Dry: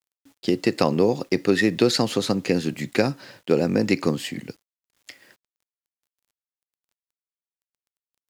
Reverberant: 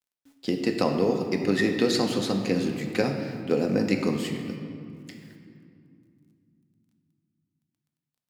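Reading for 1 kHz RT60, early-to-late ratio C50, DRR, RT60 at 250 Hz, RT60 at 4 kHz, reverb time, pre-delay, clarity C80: 2.3 s, 5.5 dB, 3.0 dB, 3.9 s, 1.5 s, 2.5 s, 4 ms, 6.5 dB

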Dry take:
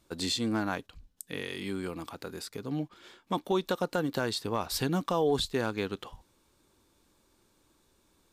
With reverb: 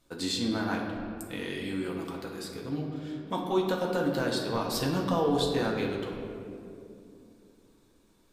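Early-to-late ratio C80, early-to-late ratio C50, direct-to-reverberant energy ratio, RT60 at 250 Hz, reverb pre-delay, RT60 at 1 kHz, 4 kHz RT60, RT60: 4.5 dB, 3.0 dB, −1.5 dB, 3.7 s, 4 ms, 2.2 s, 1.3 s, 2.6 s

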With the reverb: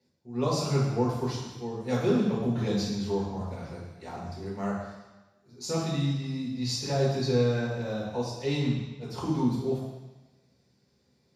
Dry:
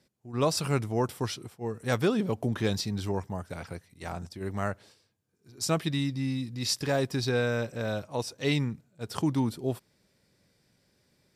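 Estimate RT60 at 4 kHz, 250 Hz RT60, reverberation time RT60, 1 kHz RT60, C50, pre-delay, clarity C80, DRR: 1.2 s, 1.1 s, 1.1 s, 1.2 s, 1.5 dB, 3 ms, 4.0 dB, −6.5 dB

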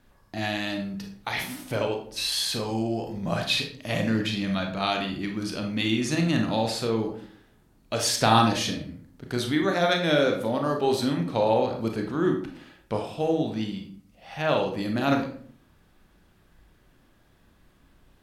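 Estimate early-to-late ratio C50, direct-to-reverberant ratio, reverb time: 7.0 dB, 2.5 dB, 0.55 s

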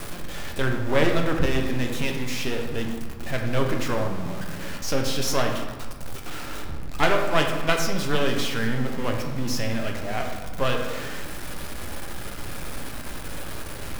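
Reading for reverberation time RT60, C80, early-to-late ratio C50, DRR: 1.4 s, 6.5 dB, 5.0 dB, 2.0 dB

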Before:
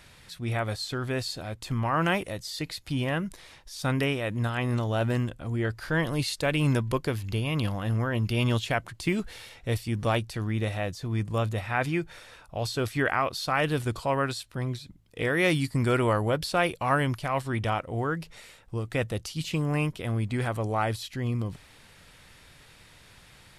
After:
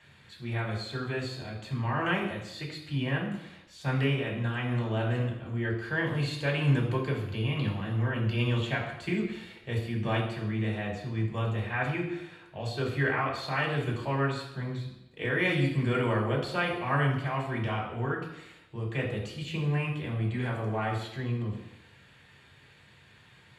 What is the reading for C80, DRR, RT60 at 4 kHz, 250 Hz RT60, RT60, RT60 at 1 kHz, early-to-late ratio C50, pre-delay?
8.0 dB, −4.5 dB, 0.90 s, 0.90 s, 0.90 s, 0.90 s, 5.5 dB, 3 ms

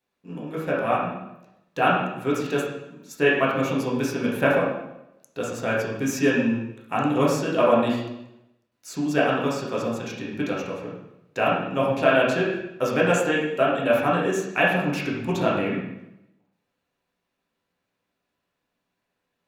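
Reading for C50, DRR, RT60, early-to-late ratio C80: 1.5 dB, −6.0 dB, 0.85 s, 5.0 dB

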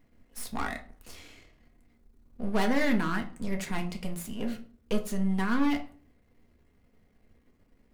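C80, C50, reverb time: 19.0 dB, 13.5 dB, 0.40 s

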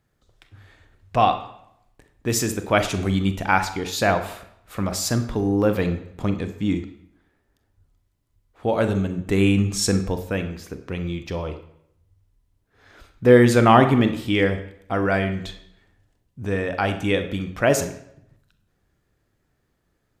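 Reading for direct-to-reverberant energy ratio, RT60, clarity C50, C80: 8.0 dB, 0.75 s, 10.5 dB, 13.0 dB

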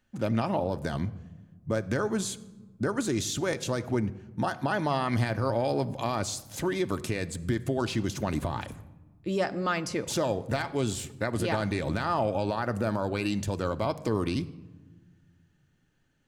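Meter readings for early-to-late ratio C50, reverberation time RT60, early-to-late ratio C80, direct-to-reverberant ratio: 18.0 dB, 1.2 s, 19.0 dB, 9.0 dB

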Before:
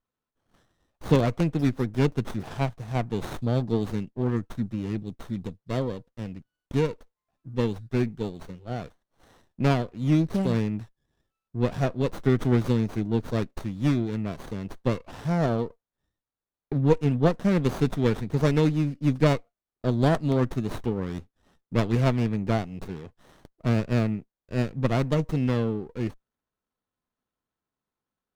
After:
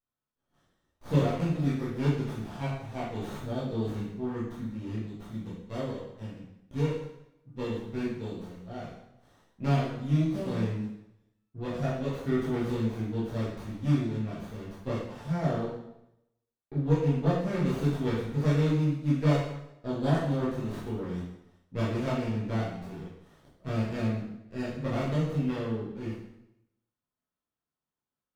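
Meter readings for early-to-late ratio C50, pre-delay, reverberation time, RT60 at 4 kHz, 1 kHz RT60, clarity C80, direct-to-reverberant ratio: 2.0 dB, 6 ms, 0.85 s, 0.75 s, 0.85 s, 5.0 dB, −9.0 dB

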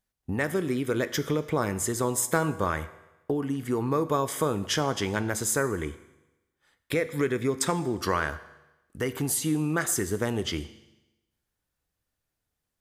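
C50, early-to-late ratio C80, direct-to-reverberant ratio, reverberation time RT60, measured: 15.0 dB, 16.5 dB, 12.0 dB, 1.0 s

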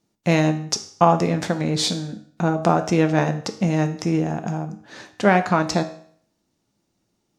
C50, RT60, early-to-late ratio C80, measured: 13.0 dB, 0.55 s, 16.0 dB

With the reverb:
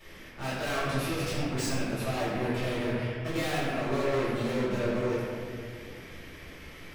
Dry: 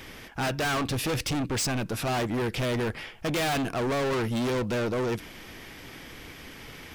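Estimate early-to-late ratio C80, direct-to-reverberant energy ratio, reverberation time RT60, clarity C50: −0.5 dB, −12.5 dB, 2.0 s, −2.5 dB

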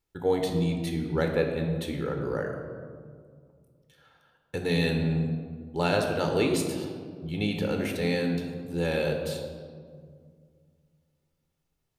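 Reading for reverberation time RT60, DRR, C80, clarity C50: 2.0 s, 3.0 dB, 6.5 dB, 5.0 dB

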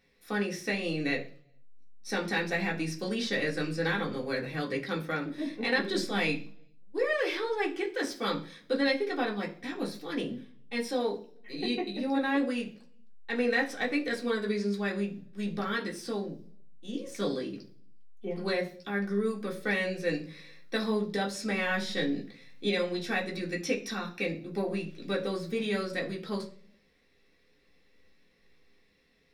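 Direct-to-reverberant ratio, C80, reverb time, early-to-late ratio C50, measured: −2.5 dB, 17.5 dB, 0.50 s, 12.5 dB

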